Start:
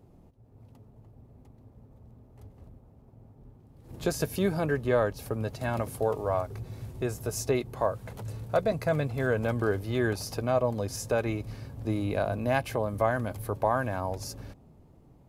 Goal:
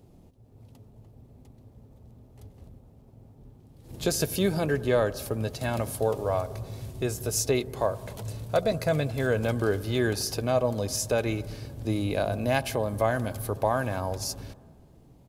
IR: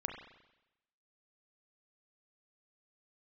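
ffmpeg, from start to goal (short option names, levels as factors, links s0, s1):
-filter_complex "[0:a]firequalizer=gain_entry='entry(540,0);entry(1100,-3);entry(3400,6)':delay=0.05:min_phase=1,asplit=2[s0][s1];[1:a]atrim=start_sample=2205,asetrate=22491,aresample=44100[s2];[s1][s2]afir=irnorm=-1:irlink=0,volume=0.158[s3];[s0][s3]amix=inputs=2:normalize=0"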